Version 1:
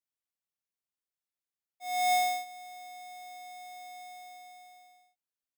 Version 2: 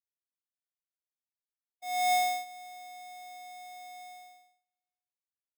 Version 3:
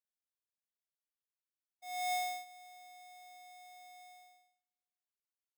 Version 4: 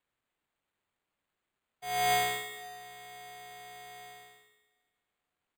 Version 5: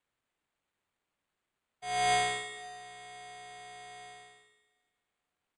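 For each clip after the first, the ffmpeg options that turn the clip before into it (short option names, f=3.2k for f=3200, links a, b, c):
-af "agate=range=-38dB:threshold=-50dB:ratio=16:detection=peak"
-af "lowshelf=f=350:g=-9,volume=-7.5dB"
-filter_complex "[0:a]asplit=2[a][b];[b]adelay=203,lowpass=f=4.8k:p=1,volume=-8dB,asplit=2[c][d];[d]adelay=203,lowpass=f=4.8k:p=1,volume=0.42,asplit=2[e][f];[f]adelay=203,lowpass=f=4.8k:p=1,volume=0.42,asplit=2[g][h];[h]adelay=203,lowpass=f=4.8k:p=1,volume=0.42,asplit=2[i][j];[j]adelay=203,lowpass=f=4.8k:p=1,volume=0.42[k];[a][c][e][g][i][k]amix=inputs=6:normalize=0,acrusher=samples=8:mix=1:aa=0.000001,volume=8.5dB"
-af "aresample=22050,aresample=44100"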